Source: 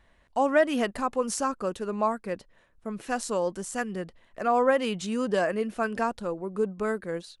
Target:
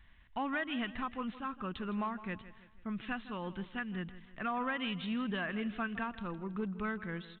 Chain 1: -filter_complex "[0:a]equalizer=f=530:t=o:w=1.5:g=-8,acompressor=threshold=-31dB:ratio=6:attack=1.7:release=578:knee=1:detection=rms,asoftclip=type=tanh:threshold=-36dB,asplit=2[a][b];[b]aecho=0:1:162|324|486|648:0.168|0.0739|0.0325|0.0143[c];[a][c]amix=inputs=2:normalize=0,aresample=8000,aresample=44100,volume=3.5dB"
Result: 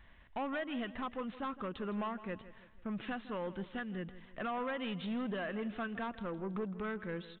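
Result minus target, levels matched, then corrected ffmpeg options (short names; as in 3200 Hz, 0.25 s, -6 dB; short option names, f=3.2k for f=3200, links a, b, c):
soft clip: distortion +10 dB; 500 Hz band +4.5 dB
-filter_complex "[0:a]equalizer=f=530:t=o:w=1.5:g=-20,acompressor=threshold=-31dB:ratio=6:attack=1.7:release=578:knee=1:detection=rms,asoftclip=type=tanh:threshold=-29.5dB,asplit=2[a][b];[b]aecho=0:1:162|324|486|648:0.168|0.0739|0.0325|0.0143[c];[a][c]amix=inputs=2:normalize=0,aresample=8000,aresample=44100,volume=3.5dB"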